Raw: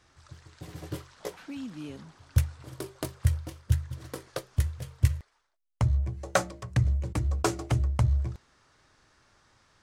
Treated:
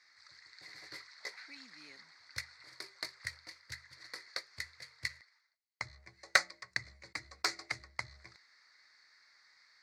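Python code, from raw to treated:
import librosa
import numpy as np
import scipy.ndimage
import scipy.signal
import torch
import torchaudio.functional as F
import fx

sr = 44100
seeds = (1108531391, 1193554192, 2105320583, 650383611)

y = fx.double_bandpass(x, sr, hz=3000.0, octaves=1.1)
y = fx.cheby_harmonics(y, sr, harmonics=(3,), levels_db=(-15,), full_scale_db=-22.0)
y = F.gain(torch.from_numpy(y), 15.5).numpy()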